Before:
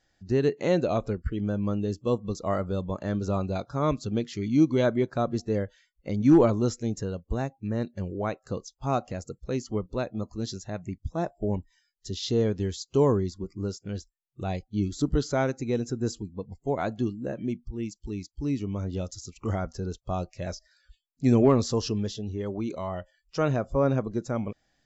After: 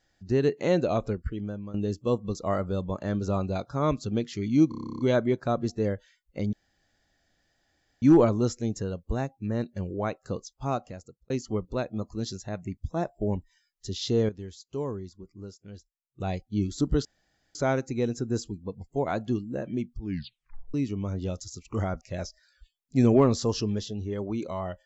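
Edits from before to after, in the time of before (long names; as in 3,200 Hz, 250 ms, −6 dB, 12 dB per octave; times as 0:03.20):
0:01.11–0:01.74: fade out, to −15 dB
0:04.69: stutter 0.03 s, 11 plays
0:06.23: splice in room tone 1.49 s
0:08.75–0:09.51: fade out
0:12.50–0:14.41: clip gain −10.5 dB
0:15.26: splice in room tone 0.50 s
0:17.70: tape stop 0.75 s
0:19.72–0:20.29: remove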